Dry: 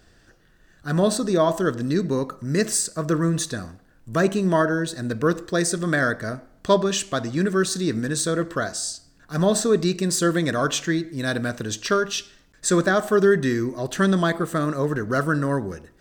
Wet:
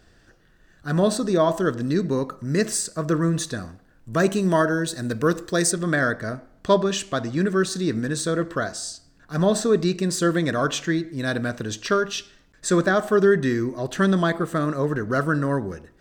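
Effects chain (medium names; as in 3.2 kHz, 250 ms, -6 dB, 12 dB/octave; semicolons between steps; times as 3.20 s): treble shelf 5.6 kHz -4 dB, from 4.20 s +5 dB, from 5.71 s -6.5 dB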